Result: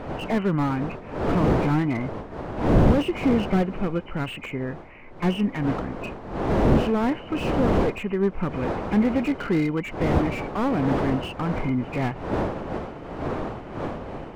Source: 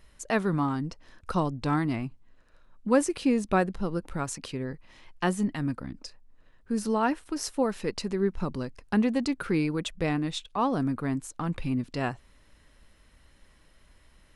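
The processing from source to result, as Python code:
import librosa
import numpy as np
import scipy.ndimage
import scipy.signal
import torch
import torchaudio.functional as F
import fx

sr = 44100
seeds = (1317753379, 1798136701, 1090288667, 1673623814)

y = fx.freq_compress(x, sr, knee_hz=2000.0, ratio=4.0)
y = fx.dmg_wind(y, sr, seeds[0], corner_hz=530.0, level_db=-29.0)
y = fx.peak_eq(y, sr, hz=1100.0, db=3.0, octaves=2.1)
y = fx.slew_limit(y, sr, full_power_hz=36.0)
y = F.gain(torch.from_numpy(y), 3.5).numpy()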